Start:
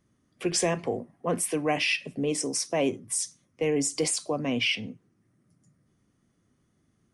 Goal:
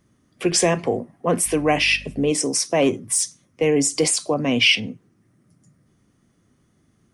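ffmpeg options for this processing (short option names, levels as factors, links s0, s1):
-filter_complex "[0:a]asettb=1/sr,asplit=3[s0][s1][s2];[s0]atrim=end=1.464[s3];[s1]atrim=start=1.46:end=2.31,asetpts=PTS-STARTPTS,afade=t=in:d=0.004:c=qsin,afade=t=out:st=0.846:d=0.004:c=qsin,aeval=exprs='val(0)+0.00447*(sin(2*PI*50*n/s)+sin(2*PI*2*50*n/s)/2+sin(2*PI*3*50*n/s)/3+sin(2*PI*4*50*n/s)/4+sin(2*PI*5*50*n/s)/5)':c=same[s4];[s2]atrim=start=2.306[s5];[s3][s4]acrossfade=d=0.004:c1=hsin:c2=qsin[s6];[s6][s5]acrossfade=d=0.004:c1=qsin:c2=hsin,asettb=1/sr,asplit=3[s7][s8][s9];[s7]atrim=end=2.824[s10];[s8]atrim=start=2.82:end=3.24,asetpts=PTS-STARTPTS,afade=t=in:d=0.004:c=qsin,afade=t=out:st=0.416:d=0.004:c=qsin,aeval=exprs='0.168*(cos(1*acos(clip(val(0)/0.168,-1,1)))-cos(1*PI/2))+0.00668*(cos(5*acos(clip(val(0)/0.168,-1,1)))-cos(5*PI/2))':c=same[s11];[s9]atrim=start=3.236[s12];[s10][s11]acrossfade=d=0.004:c1=hsin:c2=qsin[s13];[s13][s12]acrossfade=d=0.004:c1=qsin:c2=hsin,asettb=1/sr,asplit=3[s14][s15][s16];[s14]atrim=end=4.344[s17];[s15]atrim=start=4.34:end=4.8,asetpts=PTS-STARTPTS,afade=t=in:d=0.004:c=qsin,afade=t=out:st=0.456:d=0.004:c=qsin,adynamicequalizer=threshold=0.0158:dfrequency=2300:dqfactor=0.7:tfrequency=2300:tqfactor=0.7:attack=5:release=100:ratio=0.375:range=2.5:mode=boostabove:tftype=highshelf[s18];[s16]atrim=start=4.796[s19];[s17][s18]acrossfade=d=0.004:c1=hsin:c2=qsin[s20];[s20][s19]acrossfade=d=0.004:c1=qsin:c2=hsin,volume=2.37"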